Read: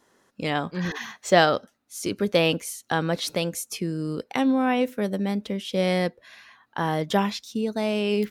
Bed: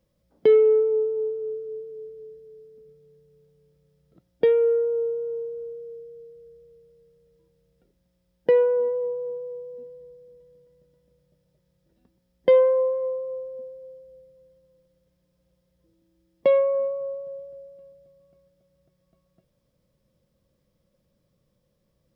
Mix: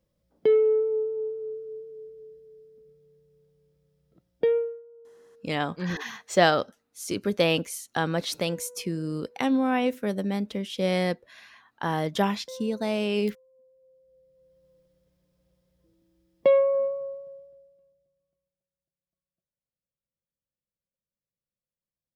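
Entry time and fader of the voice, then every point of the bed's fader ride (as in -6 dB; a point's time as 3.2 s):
5.05 s, -2.0 dB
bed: 4.57 s -4 dB
4.83 s -26 dB
13.46 s -26 dB
14.68 s -0.5 dB
16.84 s -0.5 dB
18.76 s -29 dB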